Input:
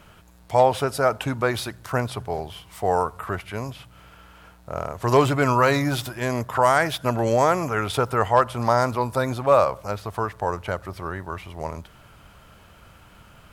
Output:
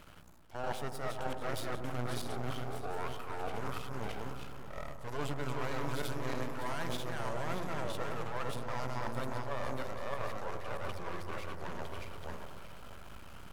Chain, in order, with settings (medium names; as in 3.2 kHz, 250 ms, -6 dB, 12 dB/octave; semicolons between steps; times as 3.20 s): backward echo that repeats 317 ms, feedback 45%, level -1.5 dB; reverse; compression 6:1, threshold -30 dBFS, peak gain reduction 18 dB; reverse; half-wave rectifier; feedback echo behind a low-pass 103 ms, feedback 71%, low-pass 1.2 kHz, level -8.5 dB; trim -2 dB